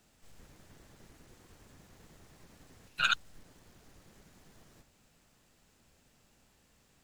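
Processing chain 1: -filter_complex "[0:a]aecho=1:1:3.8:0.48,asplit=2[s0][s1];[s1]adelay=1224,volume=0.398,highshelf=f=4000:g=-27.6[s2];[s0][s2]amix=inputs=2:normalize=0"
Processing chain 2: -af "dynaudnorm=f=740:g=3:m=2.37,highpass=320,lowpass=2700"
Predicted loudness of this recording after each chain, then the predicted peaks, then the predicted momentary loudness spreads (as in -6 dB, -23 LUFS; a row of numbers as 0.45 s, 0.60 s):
-33.5 LUFS, -26.5 LUFS; -12.5 dBFS, -9.5 dBFS; 18 LU, 11 LU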